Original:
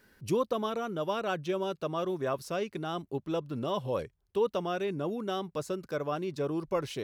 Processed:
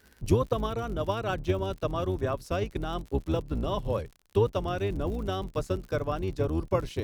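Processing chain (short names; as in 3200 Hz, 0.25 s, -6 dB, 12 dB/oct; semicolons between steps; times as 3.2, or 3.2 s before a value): octaver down 2 oct, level +4 dB; transient shaper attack +5 dB, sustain -3 dB; crackle 65/s -39 dBFS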